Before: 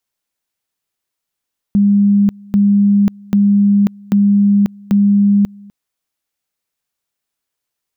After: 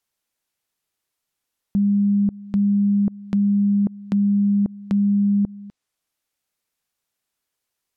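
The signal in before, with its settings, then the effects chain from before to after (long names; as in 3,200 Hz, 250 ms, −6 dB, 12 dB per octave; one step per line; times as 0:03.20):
tone at two levels in turn 202 Hz −7.5 dBFS, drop 26.5 dB, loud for 0.54 s, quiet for 0.25 s, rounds 5
brickwall limiter −14.5 dBFS
treble cut that deepens with the level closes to 630 Hz, closed at −17.5 dBFS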